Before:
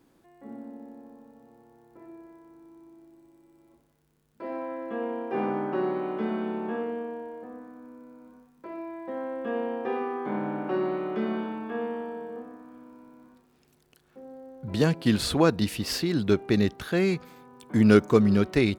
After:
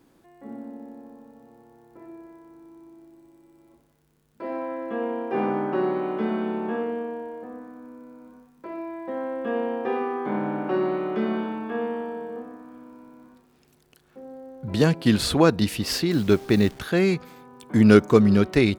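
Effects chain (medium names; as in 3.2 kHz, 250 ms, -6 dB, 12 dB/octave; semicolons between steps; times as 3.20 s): 16.11–16.79 s: send-on-delta sampling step -43 dBFS; trim +3.5 dB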